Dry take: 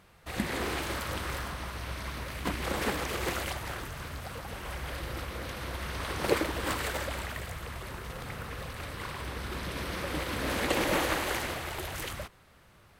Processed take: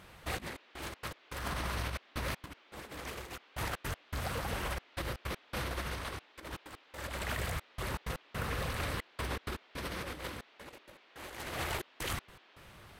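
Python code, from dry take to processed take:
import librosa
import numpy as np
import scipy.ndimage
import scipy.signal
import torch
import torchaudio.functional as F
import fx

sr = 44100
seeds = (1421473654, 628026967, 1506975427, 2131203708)

y = fx.over_compress(x, sr, threshold_db=-38.0, ratio=-0.5)
y = fx.step_gate(y, sr, bpm=160, pattern='xxxxxx..xx.x..x', floor_db=-60.0, edge_ms=4.5)
y = fx.dmg_noise_band(y, sr, seeds[0], low_hz=250.0, high_hz=3500.0, level_db=-63.0)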